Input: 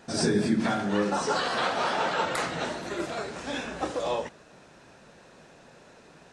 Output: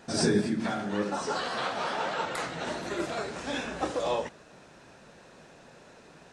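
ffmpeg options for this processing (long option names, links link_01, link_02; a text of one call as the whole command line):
ffmpeg -i in.wav -filter_complex "[0:a]asplit=3[link_01][link_02][link_03];[link_01]afade=type=out:start_time=0.4:duration=0.02[link_04];[link_02]flanger=delay=6.1:depth=9:regen=72:speed=1.8:shape=triangular,afade=type=in:start_time=0.4:duration=0.02,afade=type=out:start_time=2.66:duration=0.02[link_05];[link_03]afade=type=in:start_time=2.66:duration=0.02[link_06];[link_04][link_05][link_06]amix=inputs=3:normalize=0" out.wav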